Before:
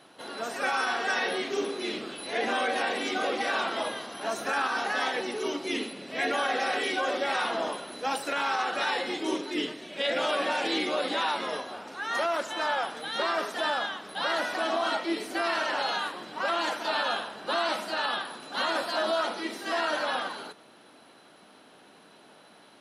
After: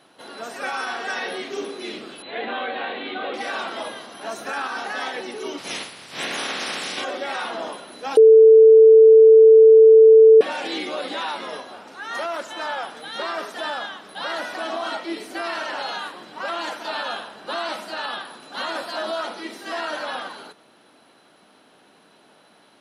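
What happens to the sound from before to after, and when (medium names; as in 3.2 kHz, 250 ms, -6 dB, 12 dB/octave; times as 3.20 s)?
2.22–3.34 s: Chebyshev low-pass 4.1 kHz, order 6
5.57–7.03 s: spectral peaks clipped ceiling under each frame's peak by 23 dB
8.17–10.41 s: bleep 443 Hz -6 dBFS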